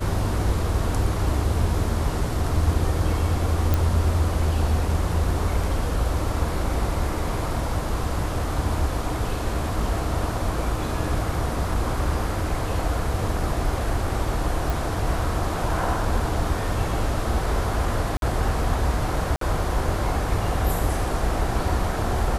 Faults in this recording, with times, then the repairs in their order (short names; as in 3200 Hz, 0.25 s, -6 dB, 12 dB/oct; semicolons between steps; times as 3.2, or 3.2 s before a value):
3.74 pop
14.7 pop
18.17–18.22 gap 52 ms
19.36–19.41 gap 53 ms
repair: de-click; interpolate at 18.17, 52 ms; interpolate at 19.36, 53 ms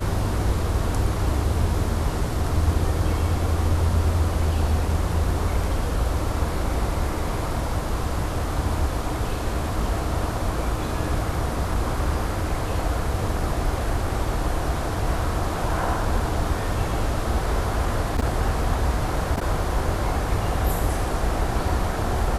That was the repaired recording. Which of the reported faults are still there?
none